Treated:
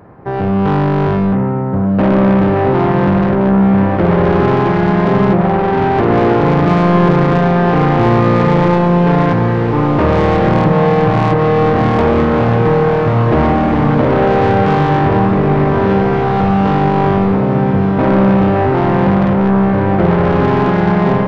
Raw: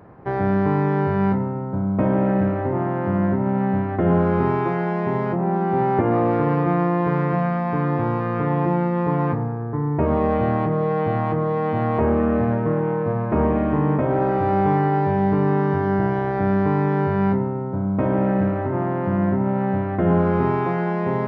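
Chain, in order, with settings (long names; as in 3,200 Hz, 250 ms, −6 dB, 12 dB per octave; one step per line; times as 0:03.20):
automatic gain control gain up to 11.5 dB
soft clipping −15 dBFS, distortion −9 dB
feedback delay with all-pass diffusion 1,923 ms, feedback 45%, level −5 dB
level +5.5 dB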